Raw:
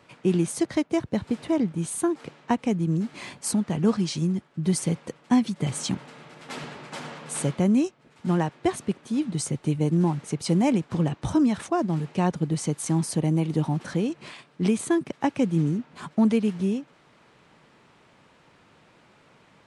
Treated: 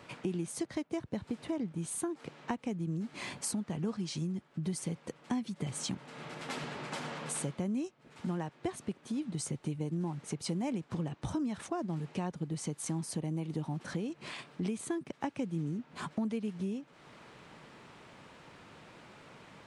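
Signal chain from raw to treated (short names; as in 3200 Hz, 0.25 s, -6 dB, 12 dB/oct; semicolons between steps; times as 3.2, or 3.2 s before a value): compressor 3:1, threshold -41 dBFS, peak gain reduction 18 dB; gain +3 dB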